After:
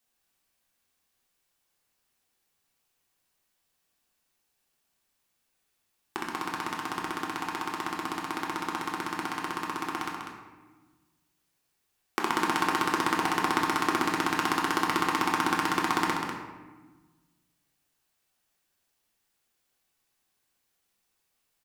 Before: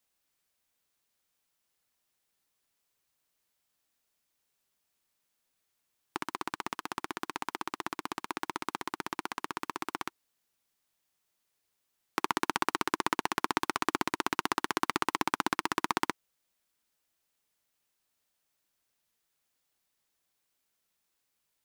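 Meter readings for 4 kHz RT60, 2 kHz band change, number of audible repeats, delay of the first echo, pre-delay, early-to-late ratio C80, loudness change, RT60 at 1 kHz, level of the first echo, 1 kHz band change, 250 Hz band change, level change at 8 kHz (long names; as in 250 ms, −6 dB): 0.75 s, +4.5 dB, 1, 196 ms, 3 ms, 3.0 dB, +4.5 dB, 1.3 s, −7.0 dB, +4.5 dB, +6.0 dB, +2.5 dB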